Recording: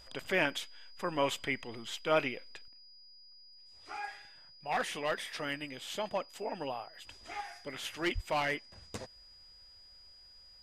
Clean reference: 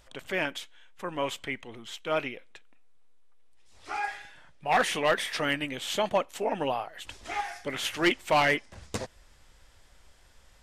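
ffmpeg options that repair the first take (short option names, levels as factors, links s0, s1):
-filter_complex "[0:a]bandreject=f=4900:w=30,asplit=3[s0][s1][s2];[s0]afade=t=out:st=8.14:d=0.02[s3];[s1]highpass=f=140:w=0.5412,highpass=f=140:w=1.3066,afade=t=in:st=8.14:d=0.02,afade=t=out:st=8.26:d=0.02[s4];[s2]afade=t=in:st=8.26:d=0.02[s5];[s3][s4][s5]amix=inputs=3:normalize=0,asetnsamples=n=441:p=0,asendcmd='2.68 volume volume 9dB',volume=1"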